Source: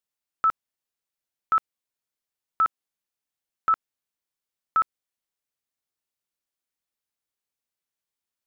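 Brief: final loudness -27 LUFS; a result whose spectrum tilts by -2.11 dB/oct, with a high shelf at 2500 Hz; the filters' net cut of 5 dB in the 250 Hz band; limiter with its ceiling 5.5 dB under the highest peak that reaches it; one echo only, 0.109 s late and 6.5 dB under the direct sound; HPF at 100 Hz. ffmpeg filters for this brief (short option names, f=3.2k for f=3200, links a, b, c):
-af "highpass=100,equalizer=f=250:t=o:g=-7,highshelf=f=2.5k:g=8.5,alimiter=limit=-19dB:level=0:latency=1,aecho=1:1:109:0.473,volume=3dB"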